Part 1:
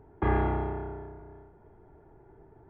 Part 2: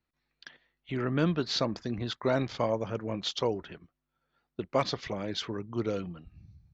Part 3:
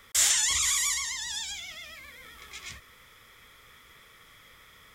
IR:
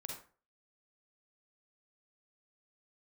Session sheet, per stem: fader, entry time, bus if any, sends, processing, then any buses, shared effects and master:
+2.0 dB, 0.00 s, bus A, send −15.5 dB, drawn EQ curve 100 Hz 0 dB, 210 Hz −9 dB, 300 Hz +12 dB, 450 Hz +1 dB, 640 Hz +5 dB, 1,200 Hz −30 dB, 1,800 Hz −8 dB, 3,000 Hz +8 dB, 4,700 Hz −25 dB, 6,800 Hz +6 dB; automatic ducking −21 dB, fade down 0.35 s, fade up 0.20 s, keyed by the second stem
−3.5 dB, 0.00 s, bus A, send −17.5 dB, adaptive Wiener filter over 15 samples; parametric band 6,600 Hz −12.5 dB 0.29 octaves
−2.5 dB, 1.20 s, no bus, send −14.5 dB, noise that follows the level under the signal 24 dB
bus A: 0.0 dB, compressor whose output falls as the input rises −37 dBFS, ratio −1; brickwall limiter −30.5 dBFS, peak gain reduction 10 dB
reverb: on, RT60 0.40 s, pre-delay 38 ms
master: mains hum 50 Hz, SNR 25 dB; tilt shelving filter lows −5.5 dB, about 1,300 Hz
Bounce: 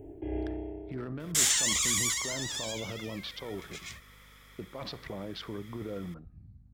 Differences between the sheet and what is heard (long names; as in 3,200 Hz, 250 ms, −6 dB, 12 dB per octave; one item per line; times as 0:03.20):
stem 3: send −14.5 dB → −22 dB
master: missing tilt shelving filter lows −5.5 dB, about 1,300 Hz